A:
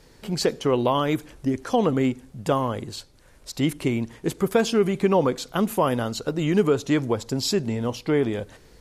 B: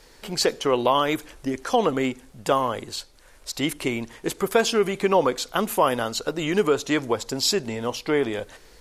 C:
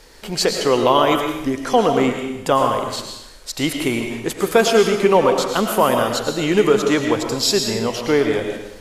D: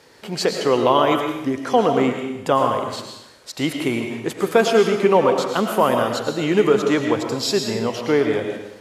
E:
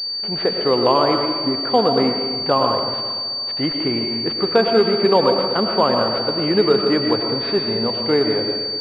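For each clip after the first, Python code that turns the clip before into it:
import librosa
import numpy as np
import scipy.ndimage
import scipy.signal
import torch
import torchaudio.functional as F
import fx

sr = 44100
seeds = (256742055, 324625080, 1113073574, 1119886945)

y1 = fx.peak_eq(x, sr, hz=130.0, db=-12.5, octaves=2.7)
y1 = y1 * librosa.db_to_amplitude(4.5)
y2 = fx.hpss(y1, sr, part='harmonic', gain_db=3)
y2 = fx.rev_freeverb(y2, sr, rt60_s=0.89, hf_ratio=1.0, predelay_ms=70, drr_db=3.5)
y2 = y2 * librosa.db_to_amplitude(3.0)
y3 = scipy.signal.sosfilt(scipy.signal.butter(4, 86.0, 'highpass', fs=sr, output='sos'), y2)
y3 = fx.high_shelf(y3, sr, hz=4200.0, db=-7.5)
y3 = y3 * librosa.db_to_amplitude(-1.0)
y4 = fx.rev_plate(y3, sr, seeds[0], rt60_s=2.4, hf_ratio=0.9, predelay_ms=100, drr_db=10.5)
y4 = fx.pwm(y4, sr, carrier_hz=4600.0)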